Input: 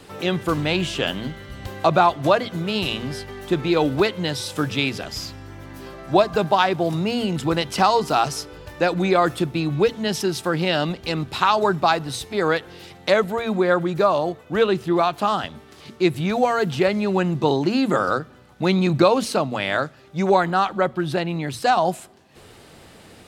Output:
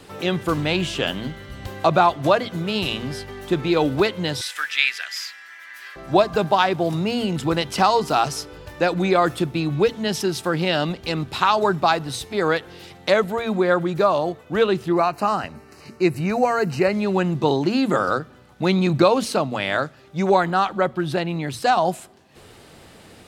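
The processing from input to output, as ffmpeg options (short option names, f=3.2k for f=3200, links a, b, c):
-filter_complex "[0:a]asettb=1/sr,asplit=3[a][b][c];[a]atrim=end=4.414[d];[b]atrim=start=4.41:end=5.96,asetpts=PTS-STARTPTS,afade=t=in:d=0.004:c=qsin,afade=t=out:st=1.546:d=0.004:c=qsin,highpass=f=1.8k:t=q:w=3.9[e];[c]atrim=start=5.956[f];[d][e]acrossfade=d=0.004:c1=hsin:c2=qsin[g];[g][f]acrossfade=d=0.004:c1=qsin:c2=hsin,asettb=1/sr,asplit=3[h][i][j];[h]atrim=end=14.924[k];[i]atrim=start=14.92:end=16.93,asetpts=PTS-STARTPTS,afade=t=in:d=0.004:c=qsin,afade=t=out:st=2.006:d=0.004:c=qsin,asuperstop=centerf=3400:order=4:qfactor=2.9[l];[j]atrim=start=16.926[m];[k][l]acrossfade=d=0.004:c1=hsin:c2=qsin[n];[n][m]acrossfade=d=0.004:c1=qsin:c2=hsin"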